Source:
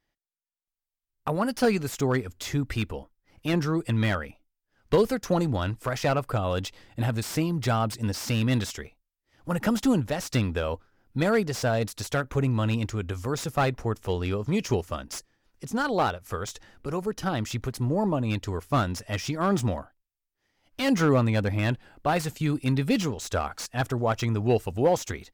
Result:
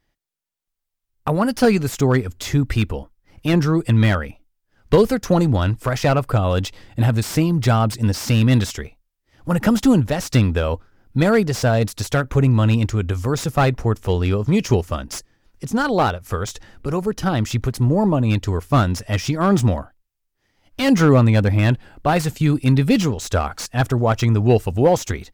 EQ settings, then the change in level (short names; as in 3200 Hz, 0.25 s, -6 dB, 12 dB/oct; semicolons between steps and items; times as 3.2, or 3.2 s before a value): low shelf 200 Hz +6 dB; +6.0 dB